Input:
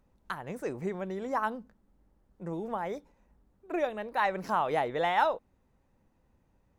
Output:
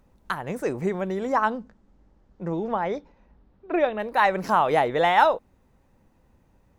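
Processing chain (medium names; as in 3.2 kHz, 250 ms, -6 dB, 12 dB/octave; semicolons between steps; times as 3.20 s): 1.32–3.98 s: low-pass 8.5 kHz -> 4 kHz 24 dB/octave; trim +8 dB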